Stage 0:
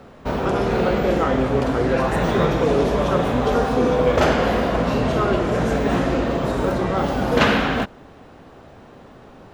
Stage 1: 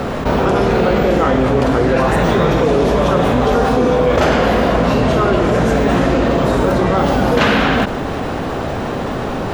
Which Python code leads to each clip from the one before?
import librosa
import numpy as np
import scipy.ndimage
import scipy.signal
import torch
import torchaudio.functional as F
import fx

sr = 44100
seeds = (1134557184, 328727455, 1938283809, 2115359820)

y = fx.env_flatten(x, sr, amount_pct=70)
y = F.gain(torch.from_numpy(y), 1.5).numpy()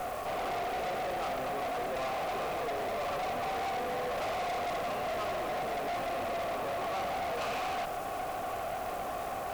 y = fx.vowel_filter(x, sr, vowel='a')
y = fx.quant_dither(y, sr, seeds[0], bits=8, dither='triangular')
y = fx.tube_stage(y, sr, drive_db=32.0, bias=0.6)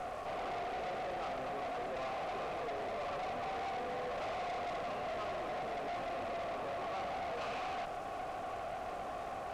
y = fx.air_absorb(x, sr, metres=67.0)
y = F.gain(torch.from_numpy(y), -5.0).numpy()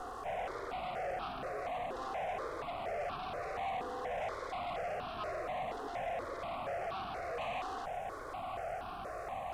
y = fx.phaser_held(x, sr, hz=4.2, low_hz=620.0, high_hz=2000.0)
y = F.gain(torch.from_numpy(y), 3.0).numpy()